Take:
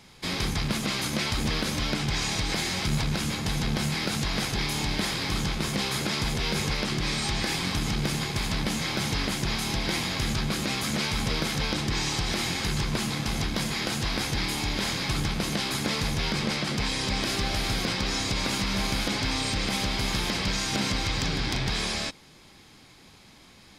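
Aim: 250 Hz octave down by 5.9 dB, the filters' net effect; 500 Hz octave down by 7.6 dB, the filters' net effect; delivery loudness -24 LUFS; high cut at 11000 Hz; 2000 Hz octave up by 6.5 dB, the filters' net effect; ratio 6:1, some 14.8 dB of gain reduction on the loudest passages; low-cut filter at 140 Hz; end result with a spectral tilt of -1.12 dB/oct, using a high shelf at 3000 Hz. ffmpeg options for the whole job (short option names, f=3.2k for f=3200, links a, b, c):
-af "highpass=140,lowpass=11k,equalizer=f=250:t=o:g=-5,equalizer=f=500:t=o:g=-9,equalizer=f=2k:t=o:g=5.5,highshelf=f=3k:g=7,acompressor=threshold=-38dB:ratio=6,volume=13.5dB"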